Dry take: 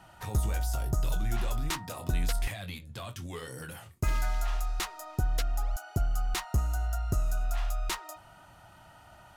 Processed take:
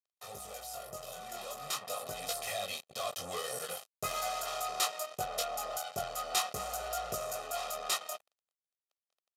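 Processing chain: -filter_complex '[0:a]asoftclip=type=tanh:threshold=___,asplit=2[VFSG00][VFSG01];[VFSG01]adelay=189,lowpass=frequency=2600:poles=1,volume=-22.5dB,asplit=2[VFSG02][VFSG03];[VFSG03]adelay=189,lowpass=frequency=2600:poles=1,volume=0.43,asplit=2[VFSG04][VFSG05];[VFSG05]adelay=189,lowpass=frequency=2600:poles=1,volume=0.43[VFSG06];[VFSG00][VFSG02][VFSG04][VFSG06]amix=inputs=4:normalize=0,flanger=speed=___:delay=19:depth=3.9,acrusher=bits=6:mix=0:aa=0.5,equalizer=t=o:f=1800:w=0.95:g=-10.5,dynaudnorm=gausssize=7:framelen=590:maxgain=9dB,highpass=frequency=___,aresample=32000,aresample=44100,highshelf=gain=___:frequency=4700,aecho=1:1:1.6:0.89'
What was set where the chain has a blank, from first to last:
-24dB, 0.42, 470, -2.5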